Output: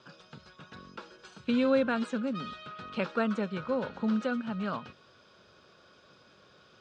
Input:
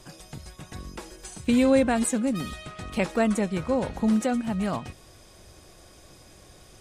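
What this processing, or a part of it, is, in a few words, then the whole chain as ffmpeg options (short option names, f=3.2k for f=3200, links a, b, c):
kitchen radio: -af "highpass=200,equalizer=f=320:t=q:w=4:g=-9,equalizer=f=740:t=q:w=4:g=-9,equalizer=f=1.4k:t=q:w=4:g=9,equalizer=f=2k:t=q:w=4:g=-9,lowpass=f=4.4k:w=0.5412,lowpass=f=4.4k:w=1.3066,volume=-3dB"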